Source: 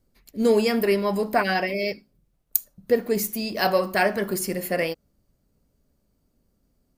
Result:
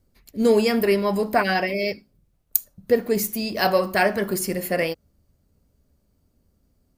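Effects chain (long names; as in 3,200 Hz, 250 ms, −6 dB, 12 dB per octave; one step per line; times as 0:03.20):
parametric band 79 Hz +8 dB 0.72 octaves
level +1.5 dB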